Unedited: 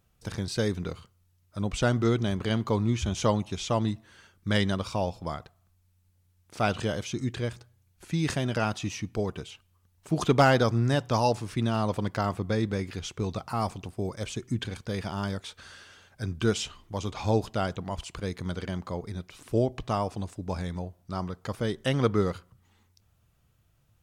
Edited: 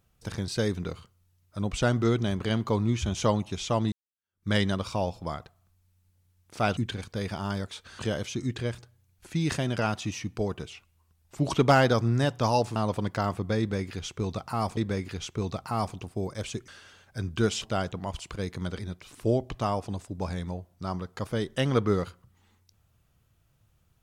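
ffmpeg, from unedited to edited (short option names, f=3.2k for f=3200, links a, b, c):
-filter_complex "[0:a]asplit=11[a][b][c][d][e][f][g][h][i][j][k];[a]atrim=end=3.92,asetpts=PTS-STARTPTS,afade=t=out:st=3.916:d=0.004:c=hsin[l];[b]atrim=start=3.92:end=6.772,asetpts=PTS-STARTPTS,afade=t=in:d=0.56:c=exp[m];[c]atrim=start=14.498:end=15.722[n];[d]atrim=start=6.768:end=9.484[o];[e]atrim=start=9.48:end=10.28,asetpts=PTS-STARTPTS,asetrate=40131,aresample=44100,atrim=end_sample=38769,asetpts=PTS-STARTPTS[p];[f]atrim=start=10.276:end=11.462[q];[g]atrim=start=11.758:end=13.772[r];[h]atrim=start=12.588:end=14.502[s];[i]atrim=start=15.718:end=16.662[t];[j]atrim=start=17.458:end=18.632[u];[k]atrim=start=19.068[v];[l][m]concat=n=2:v=0:a=1[w];[w][n]acrossfade=d=0.004:c1=hsin:c2=hsin[x];[x][o]acrossfade=d=0.004:c1=hsin:c2=hsin[y];[y][p]acrossfade=d=0.004:c1=hsin:c2=hsin[z];[z][q]acrossfade=d=0.004:c1=hsin:c2=hsin[aa];[aa][r]acrossfade=d=0.004:c1=hsin:c2=hsin[ab];[ab][s]acrossfade=d=0.004:c1=hsin:c2=hsin[ac];[ac][t]acrossfade=d=0.004:c1=hsin:c2=hsin[ad];[ad][u]acrossfade=d=0.004:c1=hsin:c2=hsin[ae];[ae][v]acrossfade=d=0.004:c1=hsin:c2=hsin"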